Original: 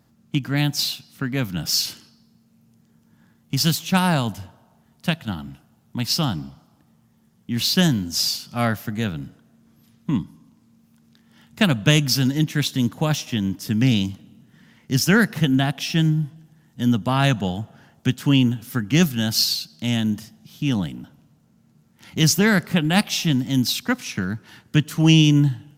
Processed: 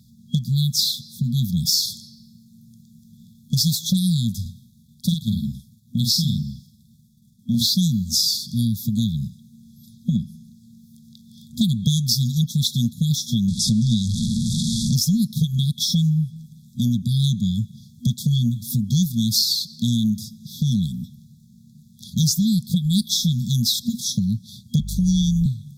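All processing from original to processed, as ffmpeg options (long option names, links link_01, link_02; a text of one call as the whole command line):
ffmpeg -i in.wav -filter_complex "[0:a]asettb=1/sr,asplit=3[link_01][link_02][link_03];[link_01]atrim=end=4.414[link_04];[link_02]atrim=start=4.41:end=7.67,asetpts=PTS-STARTPTS,afade=type=in:duration=0.004:curve=qsin,afade=type=out:start_time=3.256:duration=0.004:curve=qsin,agate=range=-33dB:threshold=-55dB:ratio=3:release=100:detection=peak,volume=9.5dB,asoftclip=hard,volume=-9.5dB,asplit=2[link_05][link_06];[link_06]adelay=47,volume=-4dB[link_07];[link_05][link_07]amix=inputs=2:normalize=0,atrim=end_sample=143766[link_08];[link_03]atrim=start=7.666[link_09];[link_04][link_08]acrossfade=duration=0.004:curve1=hsin:curve2=qsin[link_10];[link_10][link_09]acrossfade=duration=0.004:curve1=qsin:curve2=hsin,asettb=1/sr,asplit=3[link_11][link_12][link_13];[link_11]atrim=end=13.484[link_14];[link_12]atrim=start=13.48:end=14.94,asetpts=PTS-STARTPTS,afade=type=in:duration=0.004:curve=qsin,afade=type=out:start_time=1.456:duration=0.004:curve=qsin,aeval=exprs='val(0)+0.5*0.0708*sgn(val(0))':channel_layout=same,lowpass=frequency=9300:width=0.5412,lowpass=frequency=9300:width=1.3066,asplit=2[link_15][link_16];[link_16]adelay=18,volume=-11dB[link_17];[link_15][link_17]amix=inputs=2:normalize=0,atrim=end_sample=64386[link_18];[link_13]atrim=start=14.936[link_19];[link_14][link_18]acrossfade=duration=0.004:curve1=hsin:curve2=qsin[link_20];[link_20][link_19]acrossfade=duration=0.004:curve1=qsin:curve2=hsin,asettb=1/sr,asplit=3[link_21][link_22][link_23];[link_21]atrim=end=24.794[link_24];[link_22]atrim=start=24.79:end=25.46,asetpts=PTS-STARTPTS,afade=type=in:duration=0.004:curve=qsin,afade=type=out:start_time=0.666:duration=0.004:curve=qsin,tremolo=f=150:d=0.4,afreqshift=24,aeval=exprs='val(0)+0.0316*(sin(2*PI*50*n/s)+sin(2*PI*2*50*n/s)/2+sin(2*PI*3*50*n/s)/3+sin(2*PI*4*50*n/s)/4+sin(2*PI*5*50*n/s)/5)':channel_layout=same[link_25];[link_23]atrim=start=25.456[link_26];[link_24][link_25]acrossfade=duration=0.004:curve1=hsin:curve2=qsin[link_27];[link_27][link_26]acrossfade=duration=0.004:curve1=qsin:curve2=hsin,afftfilt=real='re*(1-between(b*sr/4096,240,3300))':imag='im*(1-between(b*sr/4096,240,3300))':win_size=4096:overlap=0.75,equalizer=frequency=1600:width_type=o:width=1.2:gain=6,acompressor=threshold=-27dB:ratio=4,volume=9dB" out.wav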